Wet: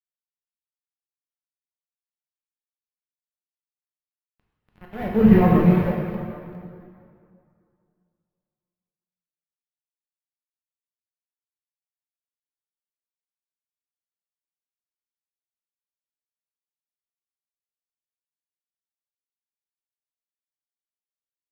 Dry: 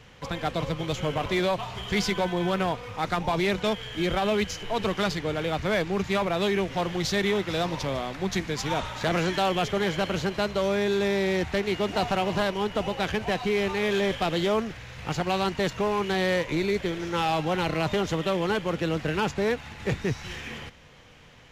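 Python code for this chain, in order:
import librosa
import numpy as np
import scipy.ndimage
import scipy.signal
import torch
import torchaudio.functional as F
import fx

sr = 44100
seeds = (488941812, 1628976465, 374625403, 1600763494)

p1 = fx.freq_compress(x, sr, knee_hz=1600.0, ratio=1.5)
p2 = fx.doppler_pass(p1, sr, speed_mps=44, closest_m=2.2, pass_at_s=5.32)
p3 = fx.low_shelf(p2, sr, hz=130.0, db=-8.0)
p4 = fx.level_steps(p3, sr, step_db=18)
p5 = p3 + (p4 * librosa.db_to_amplitude(-2.5))
p6 = fx.quant_companded(p5, sr, bits=2)
p7 = fx.bass_treble(p6, sr, bass_db=10, treble_db=-14)
p8 = fx.rev_plate(p7, sr, seeds[0], rt60_s=3.6, hf_ratio=0.7, predelay_ms=0, drr_db=-4.0)
p9 = np.repeat(p8[::3], 3)[:len(p8)]
p10 = fx.spectral_expand(p9, sr, expansion=1.5)
y = p10 * librosa.db_to_amplitude(5.5)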